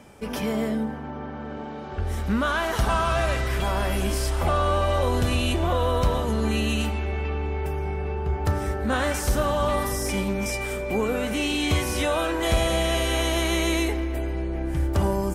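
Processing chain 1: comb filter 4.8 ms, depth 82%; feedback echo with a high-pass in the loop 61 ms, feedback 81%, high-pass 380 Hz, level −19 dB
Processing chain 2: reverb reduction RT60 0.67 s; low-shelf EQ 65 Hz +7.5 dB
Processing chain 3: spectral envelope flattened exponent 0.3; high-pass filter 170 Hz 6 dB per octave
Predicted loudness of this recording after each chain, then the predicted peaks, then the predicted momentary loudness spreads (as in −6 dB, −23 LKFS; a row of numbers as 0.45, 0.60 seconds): −23.5, −25.5, −22.5 LKFS; −8.5, −8.5, −5.5 dBFS; 7, 6, 6 LU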